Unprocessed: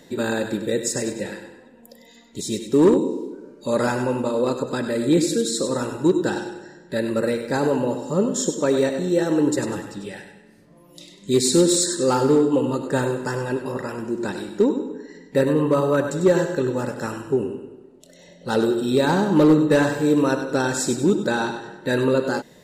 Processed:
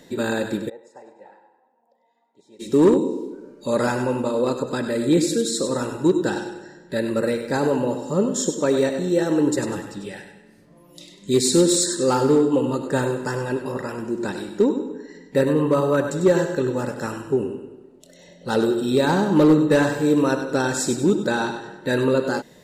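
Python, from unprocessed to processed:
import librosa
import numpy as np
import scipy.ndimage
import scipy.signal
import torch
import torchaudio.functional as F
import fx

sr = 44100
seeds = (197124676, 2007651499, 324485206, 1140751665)

y = fx.bandpass_q(x, sr, hz=830.0, q=6.7, at=(0.68, 2.59), fade=0.02)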